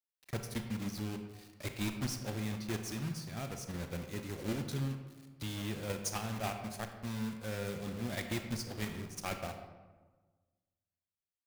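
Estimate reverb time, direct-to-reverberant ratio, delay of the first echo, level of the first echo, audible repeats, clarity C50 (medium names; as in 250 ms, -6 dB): 1.4 s, 5.5 dB, no echo, no echo, no echo, 7.0 dB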